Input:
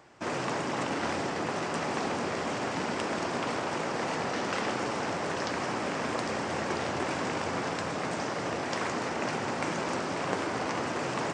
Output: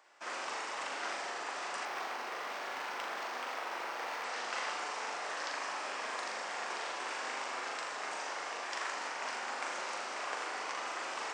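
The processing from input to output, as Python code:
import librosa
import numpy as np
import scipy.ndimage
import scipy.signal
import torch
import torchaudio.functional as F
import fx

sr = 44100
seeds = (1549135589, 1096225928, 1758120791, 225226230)

y = scipy.signal.sosfilt(scipy.signal.butter(2, 820.0, 'highpass', fs=sr, output='sos'), x)
y = fx.room_flutter(y, sr, wall_m=7.0, rt60_s=0.59)
y = fx.resample_linear(y, sr, factor=4, at=(1.85, 4.24))
y = y * librosa.db_to_amplitude(-5.5)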